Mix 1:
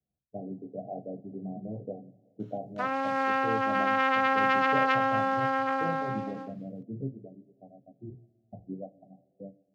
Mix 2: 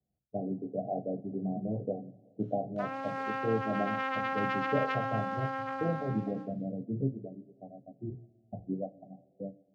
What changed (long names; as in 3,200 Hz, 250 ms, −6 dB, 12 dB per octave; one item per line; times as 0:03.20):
speech +4.0 dB
background −8.0 dB